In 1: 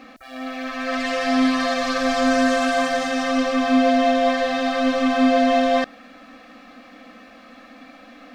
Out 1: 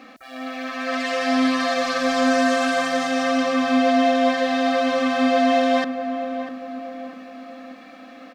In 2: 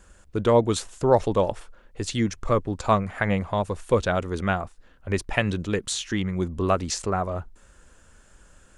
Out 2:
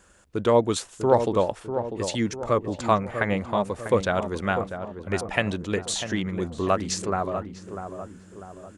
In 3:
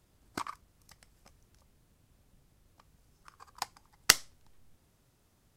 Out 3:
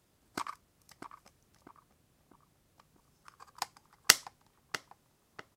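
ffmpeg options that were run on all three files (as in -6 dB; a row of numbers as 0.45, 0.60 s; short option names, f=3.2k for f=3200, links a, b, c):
-filter_complex "[0:a]highpass=f=150:p=1,asplit=2[a][b];[b]adelay=646,lowpass=f=1.2k:p=1,volume=-8dB,asplit=2[c][d];[d]adelay=646,lowpass=f=1.2k:p=1,volume=0.51,asplit=2[e][f];[f]adelay=646,lowpass=f=1.2k:p=1,volume=0.51,asplit=2[g][h];[h]adelay=646,lowpass=f=1.2k:p=1,volume=0.51,asplit=2[i][j];[j]adelay=646,lowpass=f=1.2k:p=1,volume=0.51,asplit=2[k][l];[l]adelay=646,lowpass=f=1.2k:p=1,volume=0.51[m];[c][e][g][i][k][m]amix=inputs=6:normalize=0[n];[a][n]amix=inputs=2:normalize=0"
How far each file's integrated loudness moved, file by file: -0.5, -0.5, -1.0 LU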